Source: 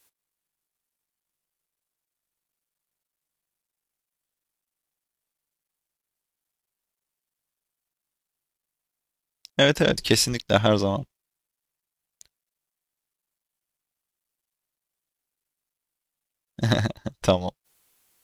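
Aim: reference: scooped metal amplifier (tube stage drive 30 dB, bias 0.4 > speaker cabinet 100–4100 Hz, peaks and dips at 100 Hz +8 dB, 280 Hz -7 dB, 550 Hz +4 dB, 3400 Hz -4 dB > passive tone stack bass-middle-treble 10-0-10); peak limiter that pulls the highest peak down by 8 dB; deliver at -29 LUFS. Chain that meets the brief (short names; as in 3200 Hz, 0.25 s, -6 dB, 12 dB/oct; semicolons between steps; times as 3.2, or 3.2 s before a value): limiter -9.5 dBFS; tube stage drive 30 dB, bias 0.4; speaker cabinet 100–4100 Hz, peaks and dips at 100 Hz +8 dB, 280 Hz -7 dB, 550 Hz +4 dB, 3400 Hz -4 dB; passive tone stack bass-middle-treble 10-0-10; gain +15.5 dB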